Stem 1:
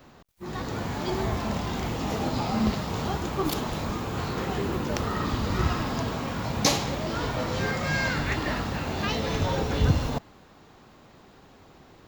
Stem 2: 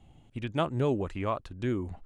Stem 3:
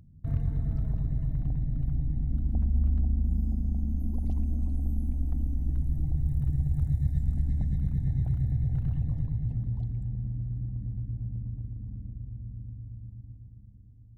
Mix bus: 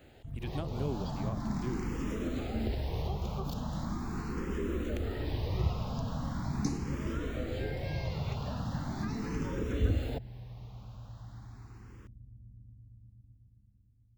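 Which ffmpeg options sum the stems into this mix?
ffmpeg -i stem1.wav -i stem2.wav -i stem3.wav -filter_complex "[0:a]asplit=2[link_01][link_02];[link_02]afreqshift=0.4[link_03];[link_01][link_03]amix=inputs=2:normalize=1,volume=-3dB[link_04];[1:a]highshelf=frequency=4400:gain=10,volume=-7.5dB[link_05];[2:a]volume=-13dB[link_06];[link_04][link_05][link_06]amix=inputs=3:normalize=0,acrossover=split=490[link_07][link_08];[link_08]acompressor=threshold=-44dB:ratio=6[link_09];[link_07][link_09]amix=inputs=2:normalize=0" out.wav

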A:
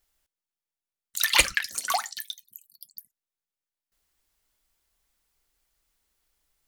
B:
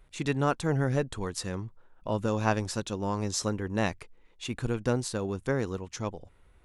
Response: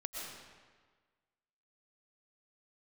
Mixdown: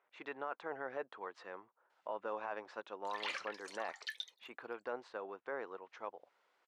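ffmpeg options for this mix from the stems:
-filter_complex "[0:a]alimiter=limit=-10.5dB:level=0:latency=1:release=92,acontrast=30,adelay=1900,volume=-2dB[link_01];[1:a]bandpass=frequency=980:width_type=q:width=0.68:csg=0,volume=-4.5dB,asplit=2[link_02][link_03];[link_03]apad=whole_len=377969[link_04];[link_01][link_04]sidechaincompress=threshold=-54dB:ratio=6:attack=16:release=150[link_05];[link_05][link_02]amix=inputs=2:normalize=0,highpass=470,lowpass=2900,alimiter=level_in=5.5dB:limit=-24dB:level=0:latency=1:release=11,volume=-5.5dB"

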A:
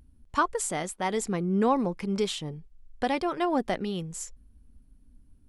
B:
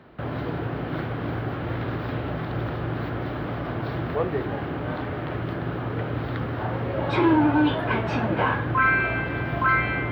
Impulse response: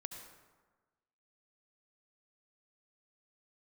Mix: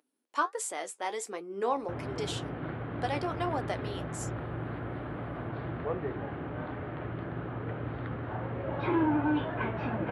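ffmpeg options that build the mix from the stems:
-filter_complex "[0:a]highpass=frequency=340:width=0.5412,highpass=frequency=340:width=1.3066,flanger=delay=6.3:depth=8.5:regen=54:speed=1.4:shape=triangular,volume=-0.5dB[link_01];[1:a]lowpass=2600,adelay=1700,volume=-8dB[link_02];[link_01][link_02]amix=inputs=2:normalize=0"

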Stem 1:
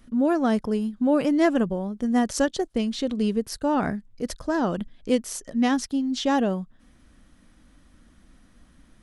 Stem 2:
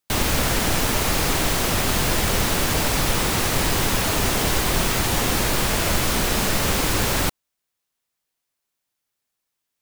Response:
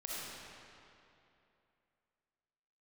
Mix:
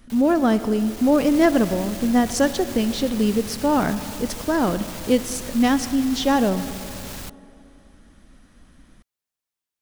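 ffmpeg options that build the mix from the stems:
-filter_complex "[0:a]volume=2.5dB,asplit=2[link_01][link_02];[link_02]volume=-12dB[link_03];[1:a]alimiter=limit=-14dB:level=0:latency=1:release=164,acrossover=split=180|3000[link_04][link_05][link_06];[link_05]acompressor=threshold=-30dB:ratio=6[link_07];[link_04][link_07][link_06]amix=inputs=3:normalize=0,asoftclip=type=hard:threshold=-22.5dB,volume=-8dB,afade=type=in:start_time=0.67:duration=0.7:silence=0.446684[link_08];[2:a]atrim=start_sample=2205[link_09];[link_03][link_09]afir=irnorm=-1:irlink=0[link_10];[link_01][link_08][link_10]amix=inputs=3:normalize=0"

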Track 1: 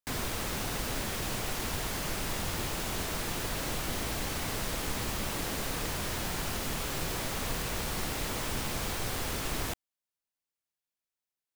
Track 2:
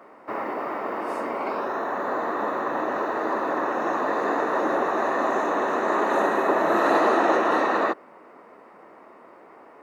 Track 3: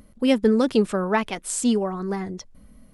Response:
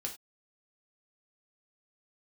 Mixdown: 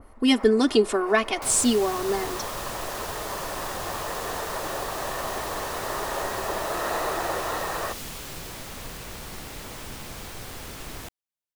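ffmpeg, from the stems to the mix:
-filter_complex "[0:a]adelay=1350,volume=-4.5dB[link_01];[1:a]highpass=frequency=370:width=0.5412,highpass=frequency=370:width=1.3066,volume=-8dB[link_02];[2:a]aecho=1:1:2.8:0.99,volume=-2.5dB,asplit=3[link_03][link_04][link_05];[link_04]volume=-19dB[link_06];[link_05]apad=whole_len=433265[link_07];[link_02][link_07]sidechaincompress=threshold=-25dB:ratio=8:attack=16:release=156[link_08];[3:a]atrim=start_sample=2205[link_09];[link_06][link_09]afir=irnorm=-1:irlink=0[link_10];[link_01][link_08][link_03][link_10]amix=inputs=4:normalize=0,adynamicequalizer=threshold=0.00891:dfrequency=2400:dqfactor=0.7:tfrequency=2400:tqfactor=0.7:attack=5:release=100:ratio=0.375:range=2.5:mode=boostabove:tftype=highshelf"

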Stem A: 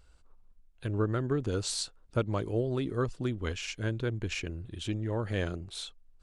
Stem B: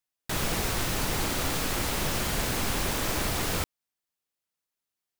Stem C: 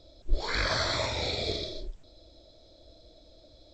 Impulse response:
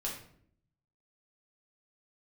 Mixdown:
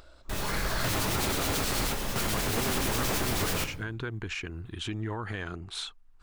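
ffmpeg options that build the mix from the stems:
-filter_complex "[0:a]equalizer=frequency=560:width_type=o:width=0.37:gain=-13,alimiter=level_in=3dB:limit=-24dB:level=0:latency=1:release=108,volume=-3dB,volume=1dB,asplit=2[link_01][link_02];[1:a]acrossover=split=2200[link_03][link_04];[link_03]aeval=exprs='val(0)*(1-0.5/2+0.5/2*cos(2*PI*9.3*n/s))':channel_layout=same[link_05];[link_04]aeval=exprs='val(0)*(1-0.5/2-0.5/2*cos(2*PI*9.3*n/s))':channel_layout=same[link_06];[link_05][link_06]amix=inputs=2:normalize=0,volume=2dB,asplit=2[link_07][link_08];[link_08]volume=-7.5dB[link_09];[2:a]asubboost=boost=7.5:cutoff=140,volume=12.5dB,asoftclip=hard,volume=-12.5dB,volume=-11dB,asplit=2[link_10][link_11];[link_11]volume=-7dB[link_12];[link_02]apad=whole_len=229291[link_13];[link_07][link_13]sidechaingate=range=-18dB:threshold=-48dB:ratio=16:detection=peak[link_14];[link_01][link_10]amix=inputs=2:normalize=0,equalizer=frequency=1200:width_type=o:width=2.3:gain=11,alimiter=level_in=1.5dB:limit=-24dB:level=0:latency=1:release=139,volume=-1.5dB,volume=0dB[link_15];[3:a]atrim=start_sample=2205[link_16];[link_09][link_12]amix=inputs=2:normalize=0[link_17];[link_17][link_16]afir=irnorm=-1:irlink=0[link_18];[link_14][link_15][link_18]amix=inputs=3:normalize=0,afftfilt=real='re*lt(hypot(re,im),0.794)':imag='im*lt(hypot(re,im),0.794)':win_size=1024:overlap=0.75,acompressor=mode=upward:threshold=-50dB:ratio=2.5,alimiter=limit=-18.5dB:level=0:latency=1:release=81"

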